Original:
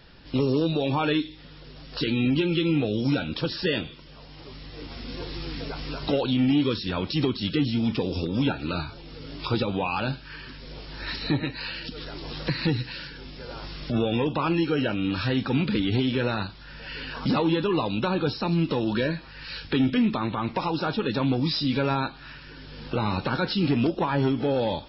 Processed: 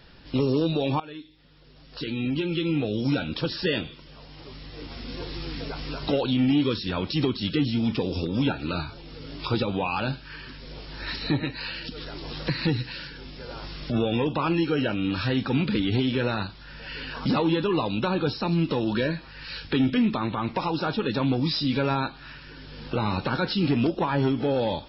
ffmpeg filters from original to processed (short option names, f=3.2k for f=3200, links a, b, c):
-filter_complex "[0:a]asplit=2[a][b];[a]atrim=end=1,asetpts=PTS-STARTPTS,afade=t=out:st=0.996:d=0.004:c=hsin:silence=0.1[c];[b]atrim=start=1,asetpts=PTS-STARTPTS,afade=t=in:d=2.25:silence=0.1[d];[c][d]concat=n=2:v=0:a=1"